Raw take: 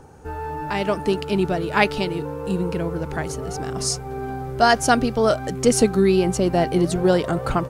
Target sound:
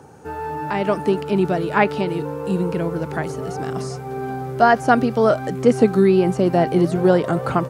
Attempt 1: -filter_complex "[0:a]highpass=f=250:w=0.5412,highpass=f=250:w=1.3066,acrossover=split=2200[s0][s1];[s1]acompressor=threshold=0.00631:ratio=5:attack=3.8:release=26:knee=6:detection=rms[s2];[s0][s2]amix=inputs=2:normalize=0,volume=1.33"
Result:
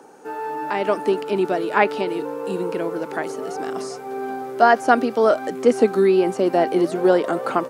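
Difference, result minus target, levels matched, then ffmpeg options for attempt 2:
125 Hz band -12.0 dB
-filter_complex "[0:a]highpass=f=100:w=0.5412,highpass=f=100:w=1.3066,acrossover=split=2200[s0][s1];[s1]acompressor=threshold=0.00631:ratio=5:attack=3.8:release=26:knee=6:detection=rms[s2];[s0][s2]amix=inputs=2:normalize=0,volume=1.33"

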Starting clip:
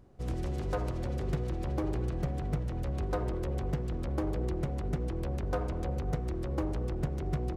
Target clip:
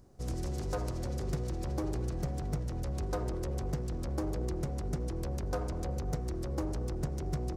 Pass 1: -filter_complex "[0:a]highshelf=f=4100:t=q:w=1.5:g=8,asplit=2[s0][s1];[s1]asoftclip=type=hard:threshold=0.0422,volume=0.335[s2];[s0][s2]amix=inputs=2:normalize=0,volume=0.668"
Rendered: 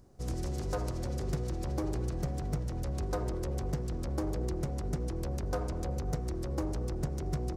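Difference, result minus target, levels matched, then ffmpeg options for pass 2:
hard clipper: distortion -9 dB
-filter_complex "[0:a]highshelf=f=4100:t=q:w=1.5:g=8,asplit=2[s0][s1];[s1]asoftclip=type=hard:threshold=0.0211,volume=0.335[s2];[s0][s2]amix=inputs=2:normalize=0,volume=0.668"

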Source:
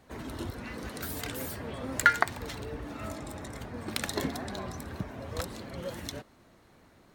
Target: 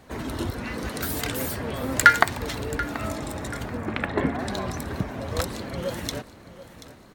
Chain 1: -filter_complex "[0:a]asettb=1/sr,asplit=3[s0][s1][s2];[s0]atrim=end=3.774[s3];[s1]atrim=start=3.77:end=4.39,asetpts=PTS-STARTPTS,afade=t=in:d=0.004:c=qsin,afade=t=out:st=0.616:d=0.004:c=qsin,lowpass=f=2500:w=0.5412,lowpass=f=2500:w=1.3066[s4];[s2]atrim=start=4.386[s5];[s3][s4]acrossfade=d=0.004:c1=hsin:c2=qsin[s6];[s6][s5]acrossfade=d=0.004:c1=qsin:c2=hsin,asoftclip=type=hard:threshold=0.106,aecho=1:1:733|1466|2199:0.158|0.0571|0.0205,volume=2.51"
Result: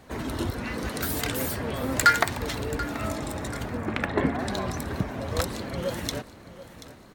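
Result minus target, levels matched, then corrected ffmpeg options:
hard clipper: distortion +12 dB
-filter_complex "[0:a]asettb=1/sr,asplit=3[s0][s1][s2];[s0]atrim=end=3.774[s3];[s1]atrim=start=3.77:end=4.39,asetpts=PTS-STARTPTS,afade=t=in:d=0.004:c=qsin,afade=t=out:st=0.616:d=0.004:c=qsin,lowpass=f=2500:w=0.5412,lowpass=f=2500:w=1.3066[s4];[s2]atrim=start=4.386[s5];[s3][s4]acrossfade=d=0.004:c1=hsin:c2=qsin[s6];[s6][s5]acrossfade=d=0.004:c1=qsin:c2=hsin,asoftclip=type=hard:threshold=0.335,aecho=1:1:733|1466|2199:0.158|0.0571|0.0205,volume=2.51"

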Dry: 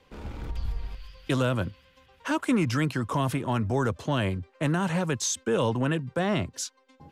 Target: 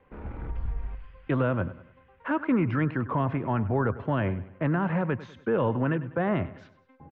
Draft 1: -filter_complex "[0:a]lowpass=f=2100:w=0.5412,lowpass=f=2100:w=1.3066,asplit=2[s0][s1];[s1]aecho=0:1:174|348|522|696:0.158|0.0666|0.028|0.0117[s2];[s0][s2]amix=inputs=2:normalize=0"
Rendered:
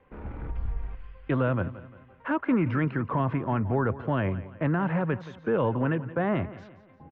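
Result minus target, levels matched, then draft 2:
echo 75 ms late
-filter_complex "[0:a]lowpass=f=2100:w=0.5412,lowpass=f=2100:w=1.3066,asplit=2[s0][s1];[s1]aecho=0:1:99|198|297|396:0.158|0.0666|0.028|0.0117[s2];[s0][s2]amix=inputs=2:normalize=0"

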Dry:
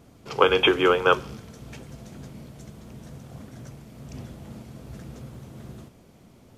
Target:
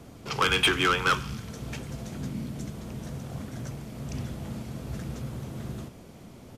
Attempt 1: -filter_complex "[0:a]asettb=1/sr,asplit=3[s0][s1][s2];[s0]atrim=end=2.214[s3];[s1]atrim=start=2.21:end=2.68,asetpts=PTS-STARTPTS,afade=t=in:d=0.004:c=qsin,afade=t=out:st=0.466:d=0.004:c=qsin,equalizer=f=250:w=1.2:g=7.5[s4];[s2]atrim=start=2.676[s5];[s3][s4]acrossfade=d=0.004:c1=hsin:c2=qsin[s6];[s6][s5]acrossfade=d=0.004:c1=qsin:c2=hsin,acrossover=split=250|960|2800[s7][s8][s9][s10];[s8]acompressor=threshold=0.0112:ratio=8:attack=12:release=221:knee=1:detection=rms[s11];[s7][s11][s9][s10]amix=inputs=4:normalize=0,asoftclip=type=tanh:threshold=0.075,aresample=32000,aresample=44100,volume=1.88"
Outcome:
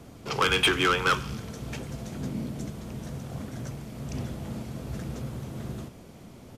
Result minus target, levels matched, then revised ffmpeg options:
compression: peak gain reduction -7.5 dB
-filter_complex "[0:a]asettb=1/sr,asplit=3[s0][s1][s2];[s0]atrim=end=2.214[s3];[s1]atrim=start=2.21:end=2.68,asetpts=PTS-STARTPTS,afade=t=in:d=0.004:c=qsin,afade=t=out:st=0.466:d=0.004:c=qsin,equalizer=f=250:w=1.2:g=7.5[s4];[s2]atrim=start=2.676[s5];[s3][s4]acrossfade=d=0.004:c1=hsin:c2=qsin[s6];[s6][s5]acrossfade=d=0.004:c1=qsin:c2=hsin,acrossover=split=250|960|2800[s7][s8][s9][s10];[s8]acompressor=threshold=0.00422:ratio=8:attack=12:release=221:knee=1:detection=rms[s11];[s7][s11][s9][s10]amix=inputs=4:normalize=0,asoftclip=type=tanh:threshold=0.075,aresample=32000,aresample=44100,volume=1.88"

